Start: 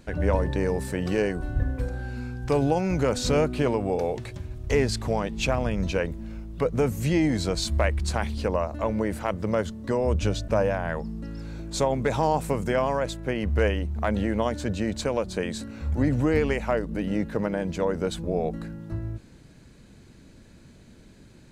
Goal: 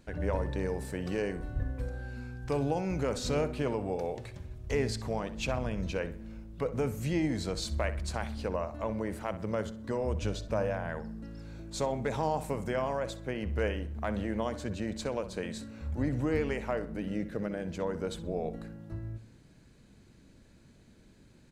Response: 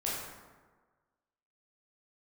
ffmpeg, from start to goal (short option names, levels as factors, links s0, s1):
-filter_complex "[0:a]asettb=1/sr,asplit=3[s0][s1][s2];[s0]atrim=end=17.094[s3];[s1]atrim=start=17.09:end=17.66,asetpts=PTS-STARTPTS,afade=t=in:d=0.004:c=qsin,afade=t=out:st=0.566:d=0.004:c=qsin,equalizer=f=940:w=4.1:g=-11.5[s4];[s2]atrim=start=17.656[s5];[s3][s4]acrossfade=d=0.004:c1=hsin:c2=qsin[s6];[s6][s5]acrossfade=d=0.004:c1=qsin:c2=hsin,asplit=2[s7][s8];[s8]adelay=63,lowpass=f=4300:p=1,volume=0.224,asplit=2[s9][s10];[s10]adelay=63,lowpass=f=4300:p=1,volume=0.38,asplit=2[s11][s12];[s12]adelay=63,lowpass=f=4300:p=1,volume=0.38,asplit=2[s13][s14];[s14]adelay=63,lowpass=f=4300:p=1,volume=0.38[s15];[s7][s9][s11][s13][s15]amix=inputs=5:normalize=0,asplit=2[s16][s17];[1:a]atrim=start_sample=2205[s18];[s17][s18]afir=irnorm=-1:irlink=0,volume=0.0447[s19];[s16][s19]amix=inputs=2:normalize=0,volume=0.398"